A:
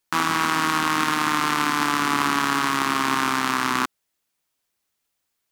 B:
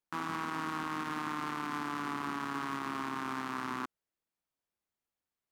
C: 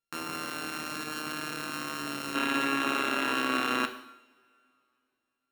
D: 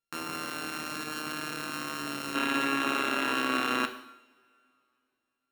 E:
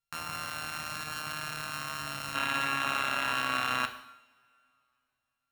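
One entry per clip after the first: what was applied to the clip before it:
high-shelf EQ 2,000 Hz −11 dB; brickwall limiter −16 dBFS, peak gain reduction 7 dB; level −8.5 dB
samples sorted by size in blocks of 32 samples; gain on a spectral selection 0:02.35–0:04.61, 220–4,100 Hz +9 dB; coupled-rooms reverb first 0.77 s, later 3.1 s, from −26 dB, DRR 6.5 dB
no processing that can be heard
drawn EQ curve 120 Hz 0 dB, 360 Hz −24 dB, 660 Hz −7 dB; level +6.5 dB

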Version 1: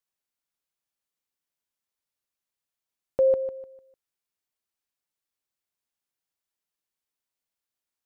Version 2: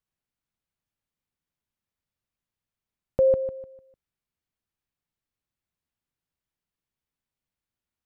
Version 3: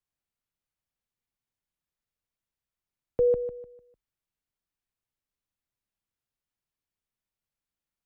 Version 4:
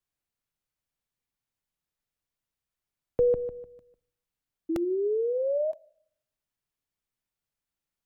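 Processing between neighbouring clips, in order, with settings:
bass and treble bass +13 dB, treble −7 dB
frequency shifter −43 Hz; level −3 dB
sound drawn into the spectrogram rise, 0:04.69–0:05.72, 320–640 Hz −28 dBFS; rectangular room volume 980 cubic metres, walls furnished, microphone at 0.3 metres; regular buffer underruns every 0.97 s, samples 64, repeat, from 0:00.88; level +1 dB

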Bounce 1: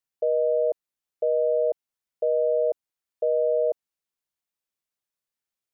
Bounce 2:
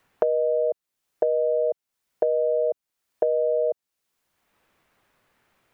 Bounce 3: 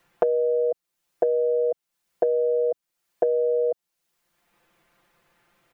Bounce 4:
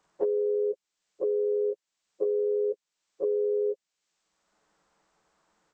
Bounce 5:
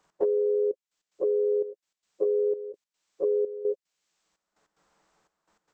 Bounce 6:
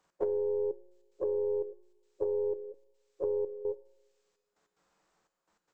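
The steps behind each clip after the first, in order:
multiband upward and downward compressor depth 100%
comb filter 5.8 ms, depth 79%
partials spread apart or drawn together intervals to 78%; level −4 dB
gate pattern "x.xxxxx.." 148 BPM −12 dB; level +2 dB
stylus tracing distortion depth 0.07 ms; tuned comb filter 180 Hz, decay 1.1 s, mix 70%; convolution reverb, pre-delay 3 ms, DRR 18 dB; level +4.5 dB

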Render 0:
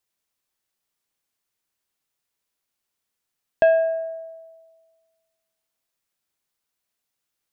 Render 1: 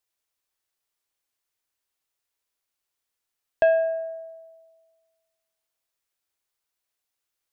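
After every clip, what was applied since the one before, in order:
parametric band 190 Hz −10.5 dB 0.88 octaves
level −2 dB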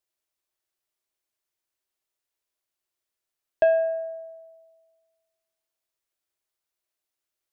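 hollow resonant body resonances 360/620 Hz, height 9 dB, ringing for 90 ms
level −3.5 dB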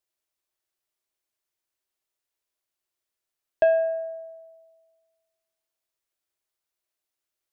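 no processing that can be heard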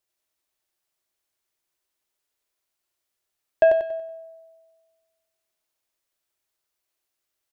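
repeating echo 94 ms, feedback 39%, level −4 dB
level +3 dB

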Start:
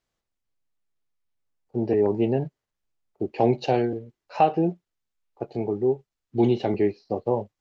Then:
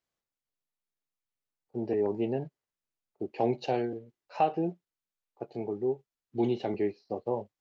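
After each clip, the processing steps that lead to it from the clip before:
low-shelf EQ 94 Hz −10.5 dB
level −6.5 dB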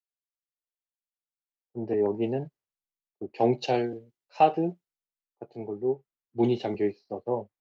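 multiband upward and downward expander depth 70%
level +2.5 dB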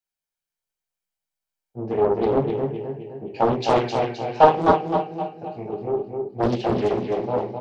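repeating echo 260 ms, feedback 50%, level −4 dB
convolution reverb RT60 0.35 s, pre-delay 15 ms, DRR 0.5 dB
highs frequency-modulated by the lows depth 0.94 ms
level +1.5 dB

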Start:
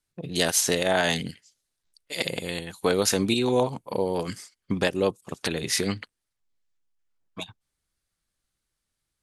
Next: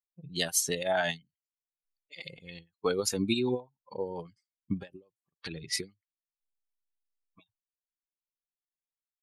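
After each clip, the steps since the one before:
spectral dynamics exaggerated over time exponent 2
low-pass that shuts in the quiet parts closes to 2,600 Hz, open at −27.5 dBFS
every ending faded ahead of time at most 280 dB per second
level −2 dB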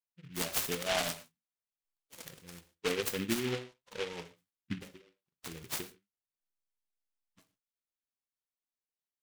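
on a send at −7 dB: convolution reverb, pre-delay 3 ms
on the sum: short delay modulated by noise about 2,200 Hz, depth 0.19 ms
level −5 dB

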